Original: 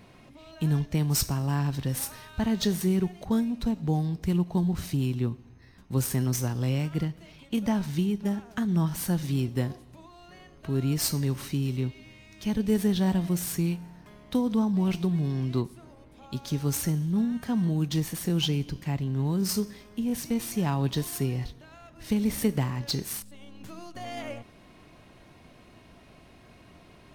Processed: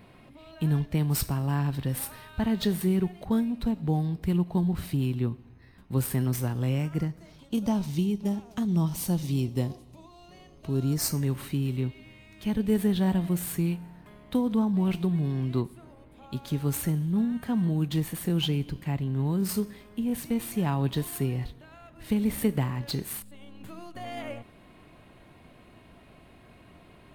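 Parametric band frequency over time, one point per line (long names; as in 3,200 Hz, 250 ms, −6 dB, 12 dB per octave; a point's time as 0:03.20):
parametric band −11 dB 0.62 octaves
0:06.46 6,100 Hz
0:07.85 1,600 Hz
0:10.68 1,600 Hz
0:11.34 5,700 Hz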